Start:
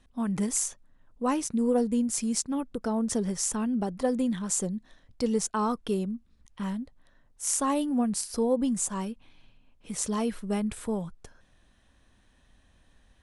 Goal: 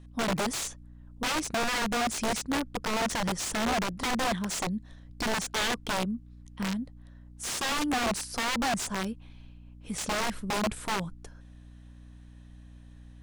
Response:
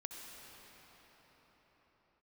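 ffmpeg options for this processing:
-filter_complex "[0:a]aeval=exprs='val(0)+0.00355*(sin(2*PI*60*n/s)+sin(2*PI*2*60*n/s)/2+sin(2*PI*3*60*n/s)/3+sin(2*PI*4*60*n/s)/4+sin(2*PI*5*60*n/s)/5)':c=same,aeval=exprs='(mod(16.8*val(0)+1,2)-1)/16.8':c=same,acrossover=split=8900[s0][s1];[s1]acompressor=threshold=0.00501:ratio=4:attack=1:release=60[s2];[s0][s2]amix=inputs=2:normalize=0,volume=1.12"

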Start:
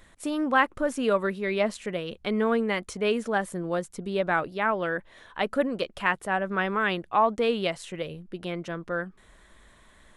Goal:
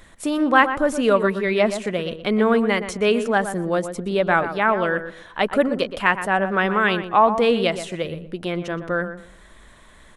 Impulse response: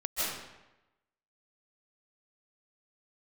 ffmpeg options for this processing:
-filter_complex "[0:a]asplit=2[s0][s1];[s1]adelay=121,lowpass=f=1800:p=1,volume=0.335,asplit=2[s2][s3];[s3]adelay=121,lowpass=f=1800:p=1,volume=0.25,asplit=2[s4][s5];[s5]adelay=121,lowpass=f=1800:p=1,volume=0.25[s6];[s0][s2][s4][s6]amix=inputs=4:normalize=0,volume=2.11"

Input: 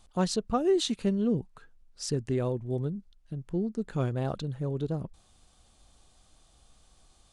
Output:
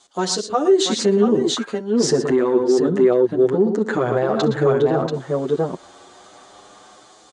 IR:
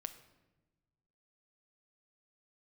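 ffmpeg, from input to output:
-filter_complex "[0:a]equalizer=f=3500:t=o:w=2.9:g=6,acrossover=split=2100[s0][s1];[s0]dynaudnorm=f=620:g=3:m=5.96[s2];[s2][s1]amix=inputs=2:normalize=0,asoftclip=type=tanh:threshold=0.562,highpass=330,equalizer=f=370:t=q:w=4:g=5,equalizer=f=2600:t=q:w=4:g=-7,equalizer=f=6800:t=q:w=4:g=5,lowpass=f=9100:w=0.5412,lowpass=f=9100:w=1.3066,aecho=1:1:64|114|126|685:0.141|0.224|0.158|0.531,alimiter=level_in=5.31:limit=0.891:release=50:level=0:latency=1,asplit=2[s3][s4];[s4]adelay=8.1,afreqshift=0.33[s5];[s3][s5]amix=inputs=2:normalize=1,volume=0.562"

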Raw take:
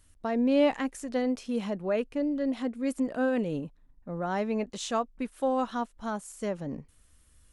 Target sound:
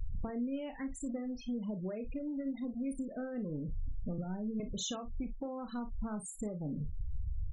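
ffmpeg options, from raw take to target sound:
-filter_complex "[0:a]aeval=exprs='val(0)+0.5*0.0282*sgn(val(0))':c=same,asettb=1/sr,asplit=3[s0][s1][s2];[s0]atrim=end=4.184[s3];[s1]atrim=start=4.18:end=4.6,asetpts=PTS-STARTPTS,afade=t=in:d=0.004:c=qsin,afade=t=out:st=0.416:d=0.004:c=qsin,acrossover=split=220|3000[s4][s5][s6];[s5]acompressor=threshold=0.0224:ratio=10[s7];[s4][s7][s6]amix=inputs=3:normalize=0[s8];[s2]atrim=start=4.596[s9];[s3][s8]acrossfade=d=0.004:c1=hsin:c2=qsin[s10];[s10][s9]acrossfade=d=0.004:c1=qsin:c2=hsin,afftfilt=real='re*gte(hypot(re,im),0.0501)':imag='im*gte(hypot(re,im),0.0501)':win_size=1024:overlap=0.75,acompressor=threshold=0.02:ratio=6,equalizer=f=970:w=0.31:g=-12,asplit=2[s11][s12];[s12]aecho=0:1:33|55:0.299|0.188[s13];[s11][s13]amix=inputs=2:normalize=0,volume=1.58"

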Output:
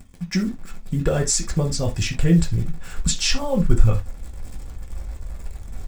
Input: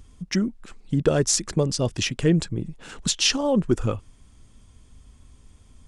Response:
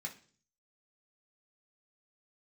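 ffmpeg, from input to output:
-filter_complex "[0:a]asubboost=boost=11.5:cutoff=72,acrusher=bits=8:dc=4:mix=0:aa=0.000001[s0];[1:a]atrim=start_sample=2205,atrim=end_sample=3969[s1];[s0][s1]afir=irnorm=-1:irlink=0,volume=1.33"

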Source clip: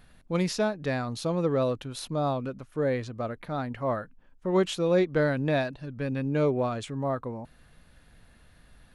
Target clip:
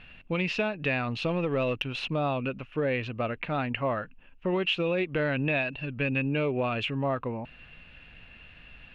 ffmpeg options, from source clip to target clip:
-filter_complex "[0:a]alimiter=limit=0.1:level=0:latency=1:release=208,lowpass=f=2700:t=q:w=11,acompressor=threshold=0.0447:ratio=3,asettb=1/sr,asplit=3[s0][s1][s2];[s0]atrim=end=1.224[s3];[s1]atrim=start=1.22:end=2.06,asetpts=PTS-STARTPTS,afade=t=in:d=0.004:c=qsin,afade=t=out:st=0.836:d=0.004:c=qsin,aeval=exprs='0.211*(cos(1*acos(clip(val(0)/0.211,-1,1)))-cos(1*PI/2))+0.00422*(cos(8*acos(clip(val(0)/0.211,-1,1)))-cos(8*PI/2))':c=same[s4];[s2]atrim=start=2.056[s5];[s3][s4]acrossfade=d=0.004:c1=hsin:c2=qsin[s6];[s6][s5]acrossfade=d=0.004:c1=qsin:c2=hsin,volume=1.33"

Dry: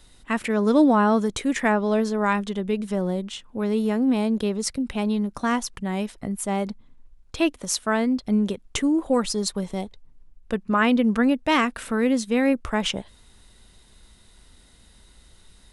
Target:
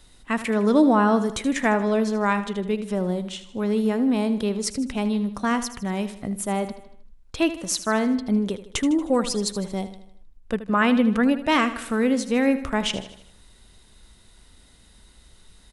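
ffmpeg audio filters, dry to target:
-af "aecho=1:1:78|156|234|312|390:0.224|0.112|0.056|0.028|0.014"

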